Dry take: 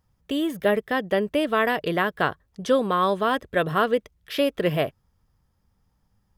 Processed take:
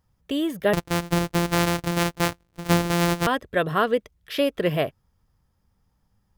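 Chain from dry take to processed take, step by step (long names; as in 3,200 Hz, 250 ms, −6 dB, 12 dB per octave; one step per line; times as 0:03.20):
0:00.73–0:03.27: samples sorted by size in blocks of 256 samples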